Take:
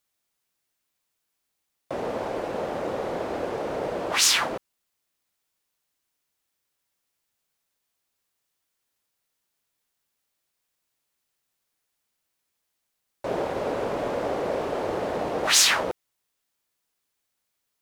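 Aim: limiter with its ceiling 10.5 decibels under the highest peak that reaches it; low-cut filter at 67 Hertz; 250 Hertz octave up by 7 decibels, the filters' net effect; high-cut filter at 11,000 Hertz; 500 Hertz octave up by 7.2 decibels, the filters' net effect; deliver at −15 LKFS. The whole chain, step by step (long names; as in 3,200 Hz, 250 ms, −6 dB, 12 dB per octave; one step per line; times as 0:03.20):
high-pass filter 67 Hz
low-pass filter 11,000 Hz
parametric band 250 Hz +6.5 dB
parametric band 500 Hz +7 dB
level +10.5 dB
brickwall limiter −5.5 dBFS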